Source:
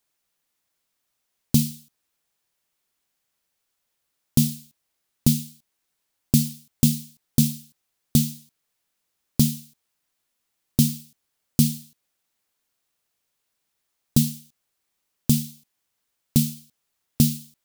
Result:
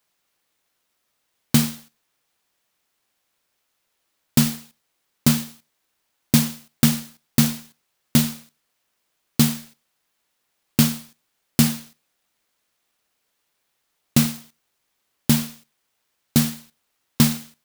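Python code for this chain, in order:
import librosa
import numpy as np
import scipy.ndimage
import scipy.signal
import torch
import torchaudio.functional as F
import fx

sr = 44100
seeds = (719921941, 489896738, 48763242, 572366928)

p1 = fx.highpass(x, sr, hz=230.0, slope=6)
p2 = p1 + fx.echo_single(p1, sr, ms=91, db=-23.5, dry=0)
p3 = fx.clock_jitter(p2, sr, seeds[0], jitter_ms=0.033)
y = F.gain(torch.from_numpy(p3), 5.5).numpy()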